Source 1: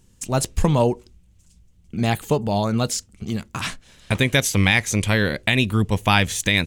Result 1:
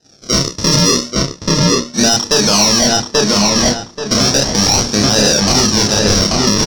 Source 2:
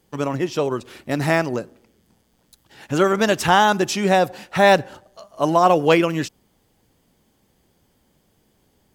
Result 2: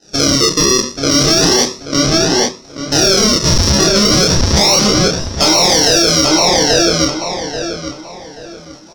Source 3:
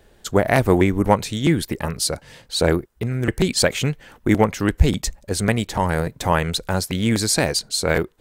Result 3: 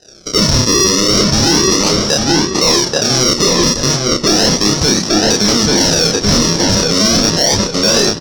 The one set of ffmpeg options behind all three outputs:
-filter_complex "[0:a]aeval=exprs='val(0)+0.5*0.0355*sgn(val(0))':channel_layout=same,highpass=43,agate=range=-33dB:threshold=-21dB:ratio=3:detection=peak,acrossover=split=160 2000:gain=0.0708 1 0.0708[link_01][link_02][link_03];[link_01][link_02][link_03]amix=inputs=3:normalize=0,bandreject=frequency=60:width_type=h:width=6,bandreject=frequency=120:width_type=h:width=6,bandreject=frequency=180:width_type=h:width=6,bandreject=frequency=240:width_type=h:width=6,bandreject=frequency=300:width_type=h:width=6,aresample=16000,asoftclip=type=hard:threshold=-19.5dB,aresample=44100,acrusher=samples=39:mix=1:aa=0.000001:lfo=1:lforange=39:lforate=0.34,lowpass=frequency=5600:width_type=q:width=13,asplit=2[link_04][link_05];[link_05]adelay=29,volume=-3dB[link_06];[link_04][link_06]amix=inputs=2:normalize=0,asplit=2[link_07][link_08];[link_08]adelay=833,lowpass=frequency=3500:poles=1,volume=-4dB,asplit=2[link_09][link_10];[link_10]adelay=833,lowpass=frequency=3500:poles=1,volume=0.31,asplit=2[link_11][link_12];[link_12]adelay=833,lowpass=frequency=3500:poles=1,volume=0.31,asplit=2[link_13][link_14];[link_14]adelay=833,lowpass=frequency=3500:poles=1,volume=0.31[link_15];[link_07][link_09][link_11][link_13][link_15]amix=inputs=5:normalize=0,aexciter=amount=1.4:drive=8.5:freq=3600,alimiter=level_in=14dB:limit=-1dB:release=50:level=0:latency=1,volume=-1dB"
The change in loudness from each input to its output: +9.5, +8.5, +10.0 LU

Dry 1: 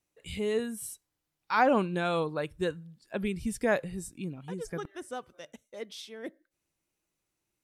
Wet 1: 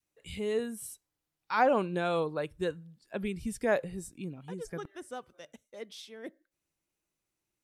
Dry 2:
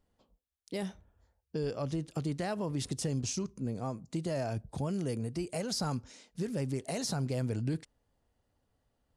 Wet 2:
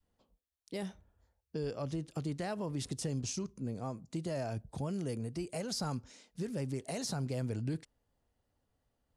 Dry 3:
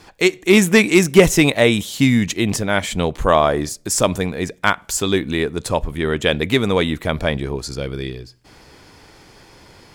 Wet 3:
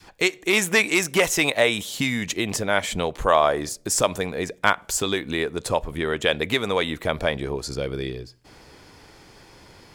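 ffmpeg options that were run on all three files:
-filter_complex "[0:a]adynamicequalizer=threshold=0.0316:dfrequency=510:dqfactor=1:tfrequency=510:tqfactor=1:attack=5:release=100:ratio=0.375:range=3:mode=boostabove:tftype=bell,acrossover=split=730|4000[link_01][link_02][link_03];[link_01]acompressor=threshold=-22dB:ratio=6[link_04];[link_04][link_02][link_03]amix=inputs=3:normalize=0,volume=-3dB"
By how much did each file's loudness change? −1.0, −3.0, −5.5 LU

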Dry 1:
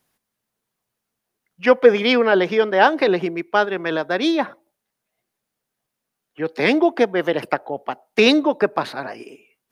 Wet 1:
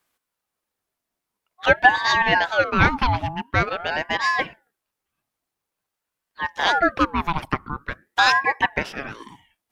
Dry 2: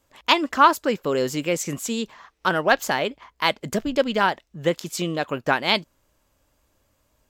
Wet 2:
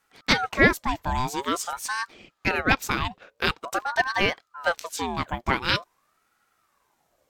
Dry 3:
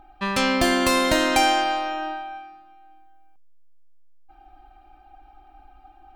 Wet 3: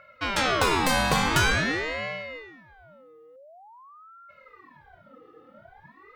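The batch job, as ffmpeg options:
-af "aeval=exprs='val(0)*sin(2*PI*920*n/s+920*0.5/0.47*sin(2*PI*0.47*n/s))':channel_layout=same"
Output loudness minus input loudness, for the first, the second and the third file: −2.0, −2.5, −3.0 LU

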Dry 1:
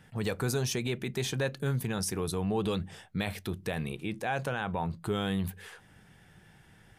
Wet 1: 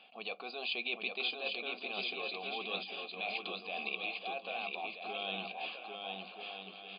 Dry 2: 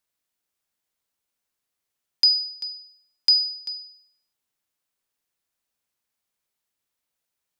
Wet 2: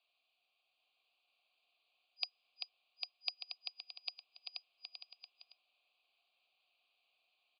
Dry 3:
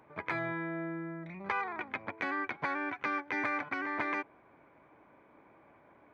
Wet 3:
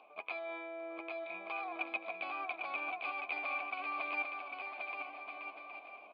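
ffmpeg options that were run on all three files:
-filter_complex "[0:a]asplit=3[link_01][link_02][link_03];[link_01]bandpass=frequency=730:width_type=q:width=8,volume=0dB[link_04];[link_02]bandpass=frequency=1090:width_type=q:width=8,volume=-6dB[link_05];[link_03]bandpass=frequency=2440:width_type=q:width=8,volume=-9dB[link_06];[link_04][link_05][link_06]amix=inputs=3:normalize=0,aemphasis=mode=reproduction:type=75kf,areverse,acompressor=threshold=-55dB:ratio=4,areverse,afftfilt=real='re*between(b*sr/4096,180,4900)':imag='im*between(b*sr/4096,180,4900)':win_size=4096:overlap=0.75,aexciter=amount=14.1:drive=3.4:freq=2500,asplit=2[link_07][link_08];[link_08]aecho=0:1:800|1280|1568|1741|1844:0.631|0.398|0.251|0.158|0.1[link_09];[link_07][link_09]amix=inputs=2:normalize=0,volume=12dB"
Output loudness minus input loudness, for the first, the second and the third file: −5.5, −26.0, −4.5 LU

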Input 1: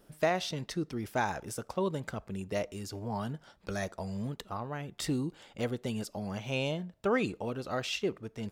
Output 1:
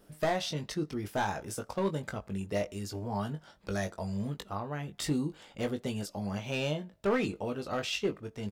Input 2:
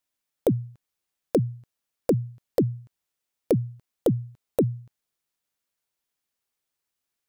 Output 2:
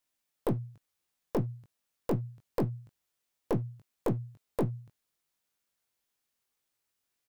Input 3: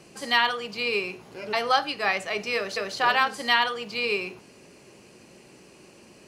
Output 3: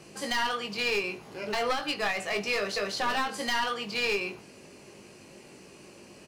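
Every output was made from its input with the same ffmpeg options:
-filter_complex "[0:a]aeval=exprs='clip(val(0),-1,0.0562)':channel_layout=same,asplit=2[link_01][link_02];[link_02]adelay=20,volume=-6.5dB[link_03];[link_01][link_03]amix=inputs=2:normalize=0,alimiter=limit=-18dB:level=0:latency=1:release=132"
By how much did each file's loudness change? +0.5, −8.0, −4.5 LU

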